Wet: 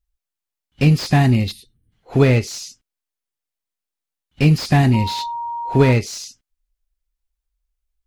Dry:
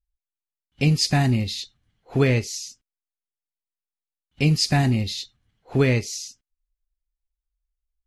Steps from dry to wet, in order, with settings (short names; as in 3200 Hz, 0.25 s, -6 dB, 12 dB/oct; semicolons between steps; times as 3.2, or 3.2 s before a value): dynamic EQ 6700 Hz, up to -4 dB, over -40 dBFS, Q 1; 1.51–1.92 spectral gain 500–8200 Hz -18 dB; 4.93–5.91 whine 940 Hz -29 dBFS; slew limiter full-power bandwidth 130 Hz; gain +5.5 dB